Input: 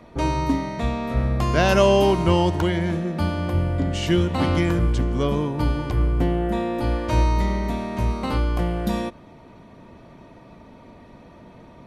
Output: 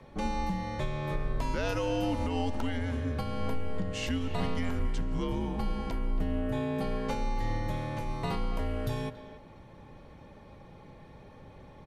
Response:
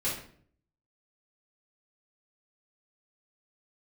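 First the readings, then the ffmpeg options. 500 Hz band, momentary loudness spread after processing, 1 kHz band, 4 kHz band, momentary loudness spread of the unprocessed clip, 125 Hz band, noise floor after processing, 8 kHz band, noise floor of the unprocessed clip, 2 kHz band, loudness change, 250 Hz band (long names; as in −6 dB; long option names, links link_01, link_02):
−12.5 dB, 21 LU, −10.5 dB, −10.5 dB, 7 LU, −11.5 dB, −52 dBFS, −10.0 dB, −47 dBFS, −10.5 dB, −11.5 dB, −10.5 dB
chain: -filter_complex "[0:a]alimiter=limit=-17dB:level=0:latency=1:release=226,afreqshift=-88,asplit=2[link_01][link_02];[link_02]adelay=280,highpass=300,lowpass=3400,asoftclip=type=hard:threshold=-23.5dB,volume=-12dB[link_03];[link_01][link_03]amix=inputs=2:normalize=0,asplit=2[link_04][link_05];[1:a]atrim=start_sample=2205,adelay=134[link_06];[link_05][link_06]afir=irnorm=-1:irlink=0,volume=-28dB[link_07];[link_04][link_07]amix=inputs=2:normalize=0,volume=-5dB"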